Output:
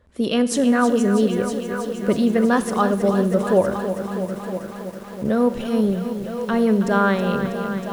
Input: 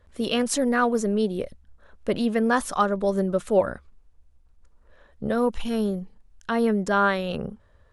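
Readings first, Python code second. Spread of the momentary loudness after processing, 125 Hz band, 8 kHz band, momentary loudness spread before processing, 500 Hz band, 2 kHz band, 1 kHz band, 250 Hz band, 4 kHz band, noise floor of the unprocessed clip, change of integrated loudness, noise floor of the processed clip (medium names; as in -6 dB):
10 LU, +7.5 dB, +1.5 dB, 12 LU, +4.5 dB, +2.0 dB, +2.5 dB, +7.0 dB, +1.5 dB, -58 dBFS, +4.0 dB, -34 dBFS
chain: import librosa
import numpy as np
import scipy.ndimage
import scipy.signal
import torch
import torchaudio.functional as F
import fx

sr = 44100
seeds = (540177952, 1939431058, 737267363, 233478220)

y = fx.highpass(x, sr, hz=47.0, slope=6)
y = fx.peak_eq(y, sr, hz=230.0, db=6.0, octaves=2.5)
y = y + 10.0 ** (-12.0 / 20.0) * np.pad(y, (int(960 * sr / 1000.0), 0))[:len(y)]
y = fx.rev_schroeder(y, sr, rt60_s=1.0, comb_ms=33, drr_db=14.5)
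y = fx.echo_crushed(y, sr, ms=322, feedback_pct=80, bits=7, wet_db=-9.5)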